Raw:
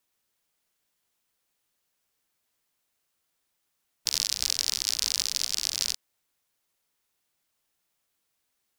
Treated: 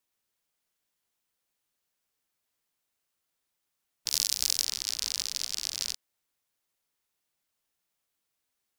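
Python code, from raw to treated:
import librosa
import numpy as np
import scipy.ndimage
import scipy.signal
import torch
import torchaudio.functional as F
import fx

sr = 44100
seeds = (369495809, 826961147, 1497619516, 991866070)

y = fx.high_shelf(x, sr, hz=6800.0, db=10.5, at=(4.09, 4.65))
y = F.gain(torch.from_numpy(y), -4.5).numpy()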